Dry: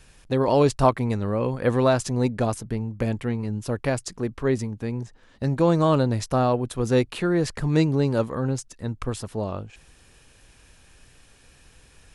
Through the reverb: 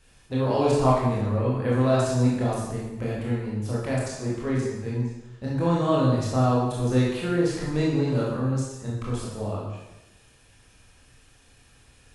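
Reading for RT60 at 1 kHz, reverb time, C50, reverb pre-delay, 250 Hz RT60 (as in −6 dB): 1.0 s, 1.0 s, 0.0 dB, 19 ms, 1.1 s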